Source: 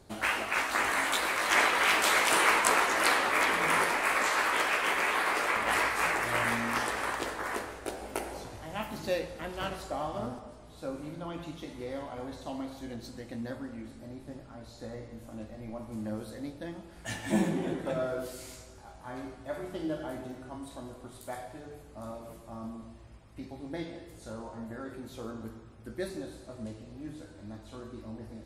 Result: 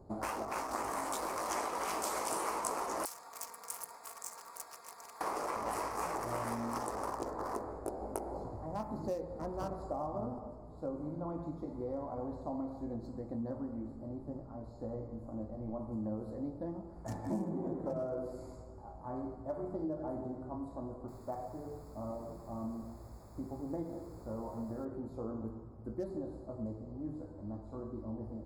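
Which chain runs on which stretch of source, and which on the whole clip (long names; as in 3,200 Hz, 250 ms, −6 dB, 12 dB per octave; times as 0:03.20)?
0:03.05–0:05.21: lower of the sound and its delayed copy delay 4.3 ms + first difference + multiband delay without the direct sound highs, lows 80 ms, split 280 Hz
0:21.08–0:24.85: high-frequency loss of the air 56 metres + bit-depth reduction 8 bits, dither triangular
whole clip: adaptive Wiener filter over 15 samples; flat-topped bell 2,400 Hz −14.5 dB; downward compressor 4 to 1, threshold −36 dBFS; level +1.5 dB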